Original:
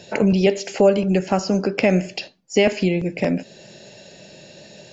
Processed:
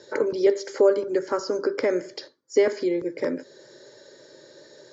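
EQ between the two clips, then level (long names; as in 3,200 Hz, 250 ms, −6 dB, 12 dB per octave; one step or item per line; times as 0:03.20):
band-pass filter 190–5,300 Hz
phaser with its sweep stopped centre 720 Hz, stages 6
0.0 dB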